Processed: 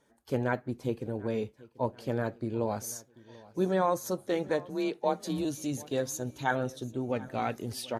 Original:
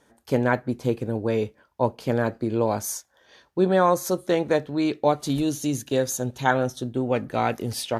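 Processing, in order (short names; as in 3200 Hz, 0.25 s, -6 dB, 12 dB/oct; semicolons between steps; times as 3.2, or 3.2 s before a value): bin magnitudes rounded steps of 15 dB; feedback echo 0.738 s, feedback 45%, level -21.5 dB; 4.69–5.45 frequency shift +34 Hz; gain -7.5 dB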